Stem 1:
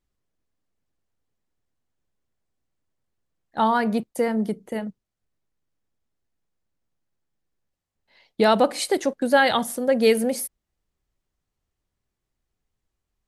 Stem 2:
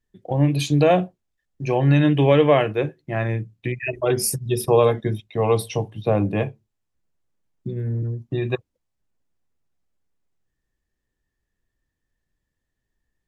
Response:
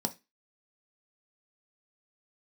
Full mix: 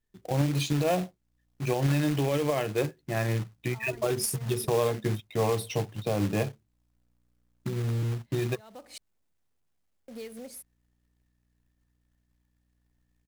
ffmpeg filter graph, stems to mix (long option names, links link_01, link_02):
-filter_complex "[0:a]acompressor=threshold=-24dB:ratio=10,aeval=exprs='val(0)+0.00126*(sin(2*PI*60*n/s)+sin(2*PI*2*60*n/s)/2+sin(2*PI*3*60*n/s)/3+sin(2*PI*4*60*n/s)/4+sin(2*PI*5*60*n/s)/5)':channel_layout=same,adelay=150,volume=-13.5dB,asplit=3[link_01][link_02][link_03];[link_01]atrim=end=8.98,asetpts=PTS-STARTPTS,afade=type=out:start_time=8.976:duration=0.004:curve=hsin[link_04];[link_02]atrim=start=8.98:end=10.08,asetpts=PTS-STARTPTS,volume=0[link_05];[link_03]atrim=start=10.08,asetpts=PTS-STARTPTS,afade=type=in:duration=0.004:curve=hsin[link_06];[link_04][link_05][link_06]concat=n=3:v=0:a=1[link_07];[1:a]volume=-3.5dB,asplit=2[link_08][link_09];[link_09]apad=whole_len=591946[link_10];[link_07][link_10]sidechaincompress=threshold=-35dB:ratio=4:attack=7.1:release=320[link_11];[link_11][link_08]amix=inputs=2:normalize=0,acrusher=bits=3:mode=log:mix=0:aa=0.000001,alimiter=limit=-18dB:level=0:latency=1:release=126"